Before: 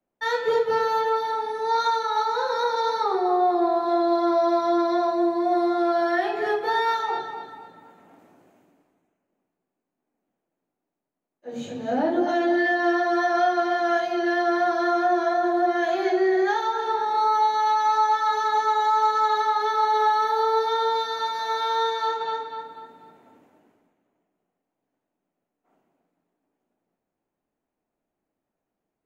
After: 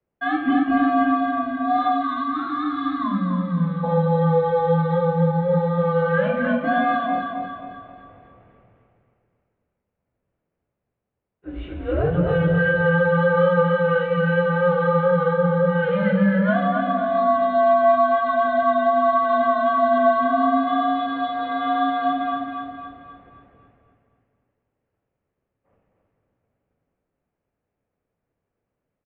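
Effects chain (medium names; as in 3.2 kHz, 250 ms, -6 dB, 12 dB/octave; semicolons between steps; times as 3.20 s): mistuned SSB -180 Hz 210–3100 Hz; 7.07–7.51 s: comb of notches 640 Hz; feedback delay 267 ms, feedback 43%, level -6.5 dB; 2.03–3.84 s: time-frequency box 320–1000 Hz -20 dB; trim +2.5 dB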